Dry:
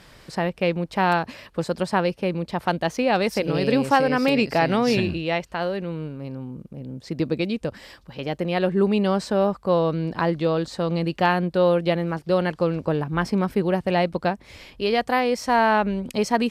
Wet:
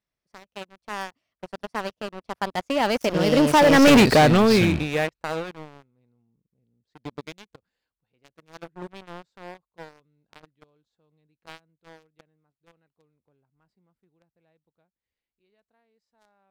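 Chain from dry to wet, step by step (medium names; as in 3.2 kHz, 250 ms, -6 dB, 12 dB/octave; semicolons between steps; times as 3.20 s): Doppler pass-by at 3.95 s, 33 m/s, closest 4.2 m; waveshaping leveller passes 5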